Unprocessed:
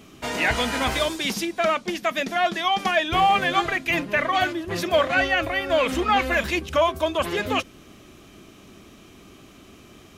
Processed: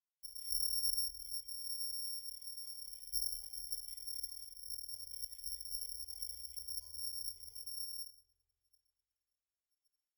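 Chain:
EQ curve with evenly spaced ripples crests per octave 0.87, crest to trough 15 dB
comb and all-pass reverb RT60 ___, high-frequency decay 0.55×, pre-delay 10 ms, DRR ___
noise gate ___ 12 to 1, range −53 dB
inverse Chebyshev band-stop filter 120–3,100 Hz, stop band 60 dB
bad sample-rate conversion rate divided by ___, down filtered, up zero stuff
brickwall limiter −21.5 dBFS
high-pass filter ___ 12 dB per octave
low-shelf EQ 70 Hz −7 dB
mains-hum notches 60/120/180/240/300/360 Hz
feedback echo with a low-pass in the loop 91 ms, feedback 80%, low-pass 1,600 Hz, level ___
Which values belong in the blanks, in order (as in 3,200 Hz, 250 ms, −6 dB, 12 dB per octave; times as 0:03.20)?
1.8 s, 4 dB, −36 dBFS, 8×, 43 Hz, −8.5 dB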